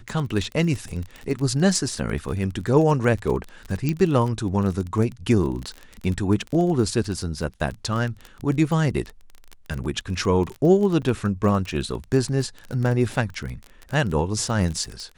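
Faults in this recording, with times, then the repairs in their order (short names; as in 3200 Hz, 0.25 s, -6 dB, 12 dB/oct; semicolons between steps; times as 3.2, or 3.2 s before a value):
crackle 24/s -27 dBFS
3.89 pop -11 dBFS
11.02–11.03 gap 6.7 ms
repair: de-click; interpolate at 11.02, 6.7 ms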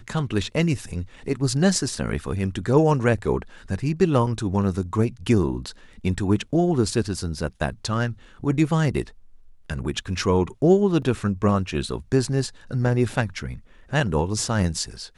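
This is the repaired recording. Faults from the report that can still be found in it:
3.89 pop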